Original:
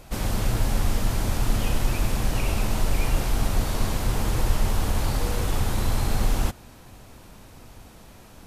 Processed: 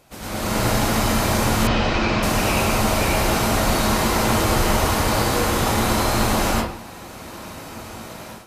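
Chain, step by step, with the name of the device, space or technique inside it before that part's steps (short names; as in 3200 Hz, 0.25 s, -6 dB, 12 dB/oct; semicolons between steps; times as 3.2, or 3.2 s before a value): far laptop microphone (reverb RT60 0.60 s, pre-delay 92 ms, DRR -6 dB; HPF 190 Hz 6 dB/oct; AGC gain up to 13.5 dB); 1.67–2.23 LPF 5000 Hz 24 dB/oct; gain -5 dB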